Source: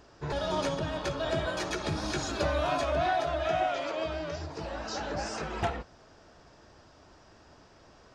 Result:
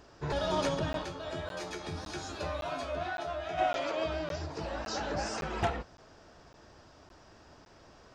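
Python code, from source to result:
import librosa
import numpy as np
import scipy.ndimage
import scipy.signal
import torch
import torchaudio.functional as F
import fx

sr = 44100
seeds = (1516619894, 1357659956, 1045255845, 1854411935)

y = fx.comb_fb(x, sr, f0_hz=87.0, decay_s=0.22, harmonics='all', damping=0.0, mix_pct=90, at=(1.03, 3.57), fade=0.02)
y = fx.buffer_crackle(y, sr, first_s=0.93, period_s=0.56, block=512, kind='zero')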